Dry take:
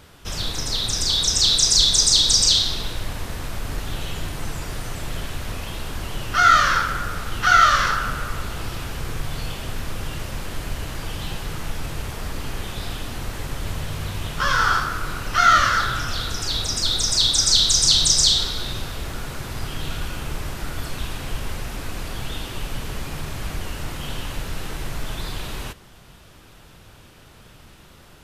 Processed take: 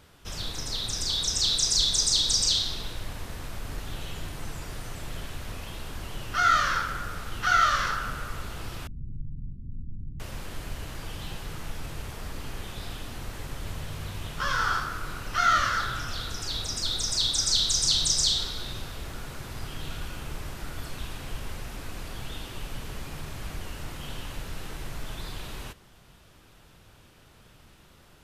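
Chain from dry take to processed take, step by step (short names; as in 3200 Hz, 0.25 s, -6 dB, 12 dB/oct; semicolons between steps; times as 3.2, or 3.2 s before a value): 8.87–10.2 inverse Chebyshev low-pass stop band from 620 Hz, stop band 50 dB; gain -7.5 dB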